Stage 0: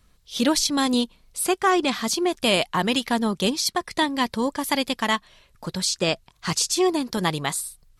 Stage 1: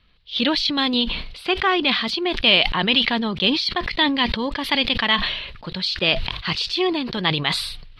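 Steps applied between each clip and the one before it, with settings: EQ curve 720 Hz 0 dB, 1400 Hz +2 dB, 3000 Hz +11 dB, 4400 Hz +5 dB, 6800 Hz -25 dB; sustainer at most 54 dB/s; gain -1.5 dB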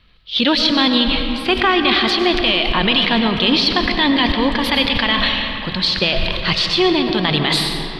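limiter -11.5 dBFS, peak gain reduction 10 dB; digital reverb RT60 3.4 s, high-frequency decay 0.45×, pre-delay 65 ms, DRR 4.5 dB; gain +6 dB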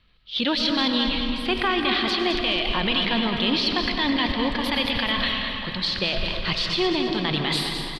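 feedback echo 0.211 s, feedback 45%, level -8 dB; gain -8 dB

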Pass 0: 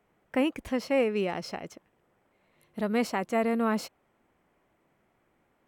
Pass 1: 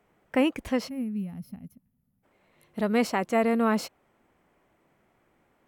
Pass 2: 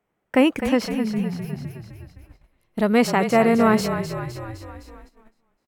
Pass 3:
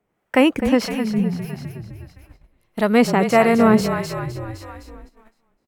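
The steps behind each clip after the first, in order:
spectral gain 0.89–2.24, 270–10000 Hz -25 dB; gain +3 dB
frequency-shifting echo 0.256 s, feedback 59%, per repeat -34 Hz, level -9 dB; gate -51 dBFS, range -15 dB; gain +6.5 dB
harmonic tremolo 1.6 Hz, depth 50%, crossover 570 Hz; gain +5 dB

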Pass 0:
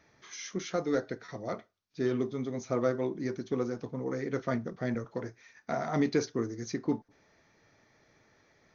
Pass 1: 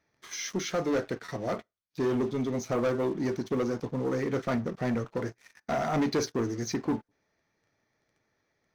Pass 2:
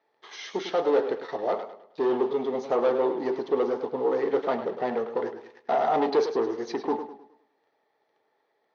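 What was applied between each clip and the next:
sample leveller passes 3; gain -5 dB
speaker cabinet 400–4000 Hz, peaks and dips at 430 Hz +8 dB, 830 Hz +9 dB, 1500 Hz -5 dB, 2300 Hz -7 dB; warbling echo 0.104 s, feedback 38%, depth 82 cents, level -10 dB; gain +3 dB

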